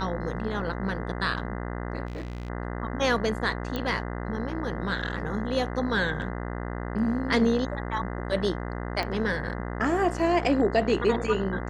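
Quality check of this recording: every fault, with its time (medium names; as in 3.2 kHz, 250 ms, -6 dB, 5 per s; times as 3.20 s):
buzz 60 Hz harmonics 34 -33 dBFS
2.07–2.50 s: clipped -31 dBFS
3.76 s: pop -17 dBFS
9.03 s: pop -16 dBFS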